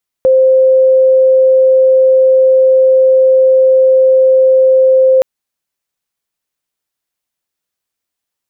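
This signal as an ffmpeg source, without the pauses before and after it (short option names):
-f lavfi -i "sine=f=523:d=4.97:r=44100,volume=13.56dB"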